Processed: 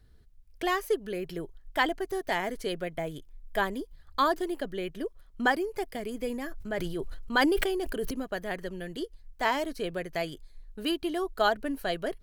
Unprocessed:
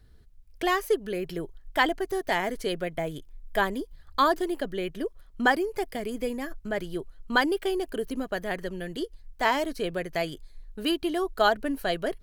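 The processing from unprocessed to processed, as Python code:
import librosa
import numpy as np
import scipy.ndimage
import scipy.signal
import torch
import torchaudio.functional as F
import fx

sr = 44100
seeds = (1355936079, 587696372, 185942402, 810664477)

y = fx.sustainer(x, sr, db_per_s=22.0, at=(6.27, 8.11))
y = F.gain(torch.from_numpy(y), -3.0).numpy()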